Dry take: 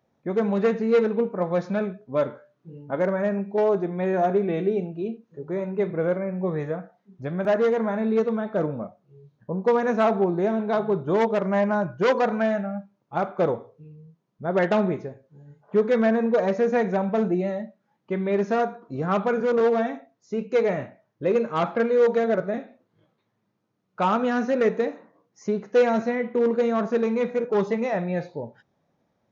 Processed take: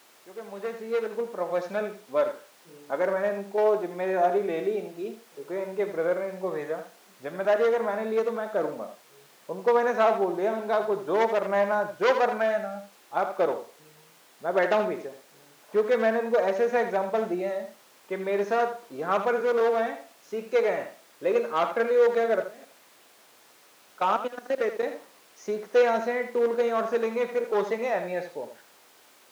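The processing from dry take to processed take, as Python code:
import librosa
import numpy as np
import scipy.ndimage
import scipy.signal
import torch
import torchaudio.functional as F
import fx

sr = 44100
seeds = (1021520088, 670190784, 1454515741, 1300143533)

y = fx.fade_in_head(x, sr, length_s=1.87)
y = fx.level_steps(y, sr, step_db=22, at=(22.44, 24.83))
y = fx.dmg_noise_colour(y, sr, seeds[0], colour='pink', level_db=-54.0)
y = scipy.signal.sosfilt(scipy.signal.butter(2, 420.0, 'highpass', fs=sr, output='sos'), y)
y = y + 10.0 ** (-10.5 / 20.0) * np.pad(y, (int(80 * sr / 1000.0), 0))[:len(y)]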